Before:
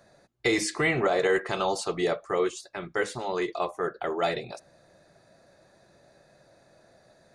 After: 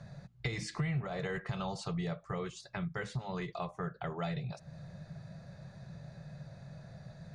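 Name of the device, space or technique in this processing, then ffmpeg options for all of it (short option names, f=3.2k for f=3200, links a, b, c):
jukebox: -af "lowpass=6k,lowshelf=f=220:t=q:w=3:g=12,acompressor=threshold=-41dB:ratio=3,volume=2dB"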